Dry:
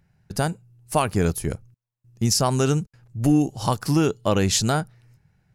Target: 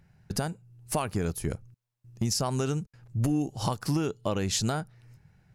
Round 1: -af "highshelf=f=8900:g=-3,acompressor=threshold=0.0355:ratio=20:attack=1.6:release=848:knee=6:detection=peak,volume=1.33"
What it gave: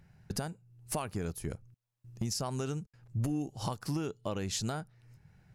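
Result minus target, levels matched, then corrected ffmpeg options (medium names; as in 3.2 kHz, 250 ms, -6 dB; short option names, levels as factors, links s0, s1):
compression: peak gain reduction +6.5 dB
-af "highshelf=f=8900:g=-3,acompressor=threshold=0.0794:ratio=20:attack=1.6:release=848:knee=6:detection=peak,volume=1.33"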